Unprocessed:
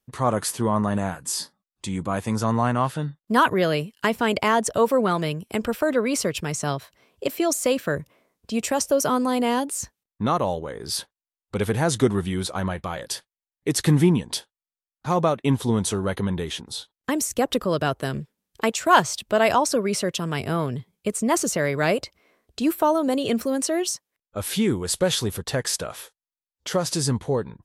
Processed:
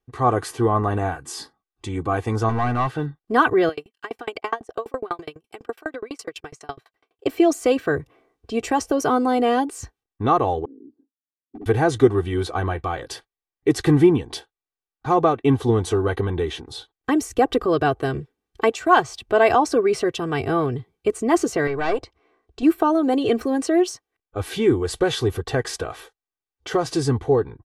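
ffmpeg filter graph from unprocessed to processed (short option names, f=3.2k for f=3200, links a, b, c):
-filter_complex "[0:a]asettb=1/sr,asplit=3[a][b][c];[a]atrim=end=2.494[d];[b]atrim=start=2.49:end=3.06,asetpts=PTS-STARTPTS,afade=t=in:d=0.004:c=qsin,afade=t=out:st=0.566:d=0.004:c=qsin,highshelf=f=11k:g=-9,volume=20dB,asoftclip=hard,volume=-20dB,acrusher=bits=8:mix=0:aa=0.5[e];[c]atrim=start=3.056[f];[d][e]acrossfade=d=0.004:c1=hsin:c2=qsin[g];[g][f]acrossfade=d=0.004:c1=qsin:c2=hsin,asettb=1/sr,asplit=3[h][i][j];[h]atrim=end=3.694[k];[i]atrim=start=3.69:end=7.26,asetpts=PTS-STARTPTS,afade=t=in:d=0.004:c=qsin,afade=t=out:st=3.566:d=0.004:c=qsin,highpass=f=540:p=1,aeval=exprs='val(0)*pow(10,-36*if(lt(mod(12*n/s,1),2*abs(12)/1000),1-mod(12*n/s,1)/(2*abs(12)/1000),(mod(12*n/s,1)-2*abs(12)/1000)/(1-2*abs(12)/1000))/20)':c=same[l];[j]atrim=start=7.256[m];[k][l]acrossfade=d=0.004:c1=hsin:c2=qsin[n];[n][m]acrossfade=d=0.004:c1=qsin:c2=hsin,asettb=1/sr,asplit=3[o][p][q];[o]atrim=end=10.654[r];[p]atrim=start=10.65:end=11.66,asetpts=PTS-STARTPTS,afade=t=in:d=0.004:c=qsin,afade=t=out:st=1.006:d=0.004:c=qsin,asuperpass=centerf=260:order=4:qfactor=3.9,volume=34dB,asoftclip=hard,volume=-34dB[s];[q]atrim=start=11.656[t];[r][s]acrossfade=d=0.004:c1=hsin:c2=qsin[u];[u][t]acrossfade=d=0.004:c1=qsin:c2=hsin,asettb=1/sr,asplit=3[v][w][x];[v]atrim=end=21.674[y];[w]atrim=start=21.67:end=22.63,asetpts=PTS-STARTPTS,afade=t=in:d=0.004:c=qsin,afade=t=out:st=0.956:d=0.004:c=qsin,lowpass=f=9.3k:w=0.5412,lowpass=f=9.3k:w=1.3066,equalizer=f=990:t=o:w=0.34:g=5.5,aeval=exprs='(tanh(5.01*val(0)+0.75)-tanh(0.75))/5.01':c=same[z];[x]atrim=start=22.626[aa];[y][z]acrossfade=d=0.004:c1=hsin:c2=qsin[ab];[ab][aa]acrossfade=d=0.004:c1=qsin:c2=hsin,lowpass=f=1.6k:p=1,aecho=1:1:2.6:0.77,dynaudnorm=f=130:g=3:m=3.5dB"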